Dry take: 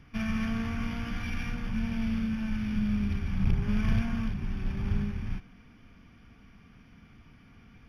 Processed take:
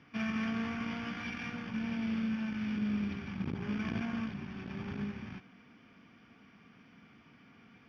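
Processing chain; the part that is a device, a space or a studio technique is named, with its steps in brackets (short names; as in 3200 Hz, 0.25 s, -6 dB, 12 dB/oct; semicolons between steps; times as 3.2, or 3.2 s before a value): public-address speaker with an overloaded transformer (core saturation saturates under 110 Hz; BPF 200–5100 Hz)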